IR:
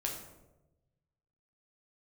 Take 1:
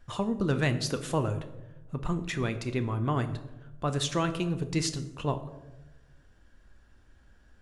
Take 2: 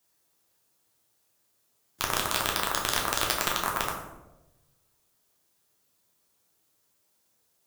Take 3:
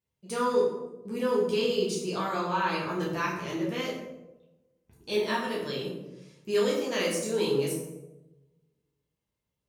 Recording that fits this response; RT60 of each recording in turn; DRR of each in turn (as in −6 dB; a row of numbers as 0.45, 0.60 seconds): 2; 1.1, 1.0, 1.0 seconds; 8.5, −1.0, −5.5 decibels